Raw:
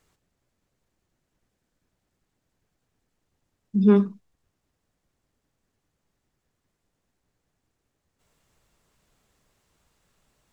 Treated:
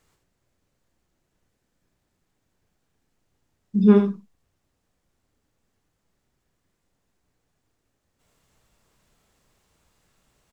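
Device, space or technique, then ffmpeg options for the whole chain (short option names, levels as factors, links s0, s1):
slapback doubling: -filter_complex "[0:a]asplit=3[s0][s1][s2];[s1]adelay=33,volume=0.398[s3];[s2]adelay=79,volume=0.447[s4];[s0][s3][s4]amix=inputs=3:normalize=0,volume=1.12"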